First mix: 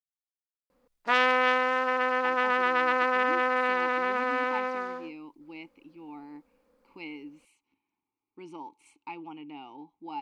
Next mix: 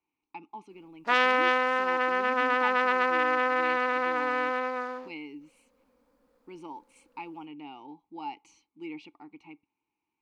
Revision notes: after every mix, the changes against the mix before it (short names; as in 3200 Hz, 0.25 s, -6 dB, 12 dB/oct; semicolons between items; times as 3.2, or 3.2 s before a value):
speech: entry -1.90 s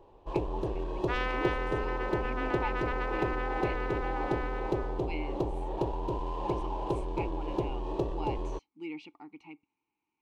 first sound: unmuted; second sound -10.5 dB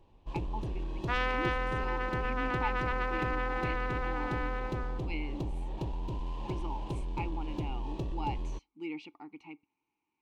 first sound: add EQ curve 240 Hz 0 dB, 400 Hz -13 dB, 1400 Hz -8 dB, 2200 Hz -1 dB; reverb: on, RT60 0.35 s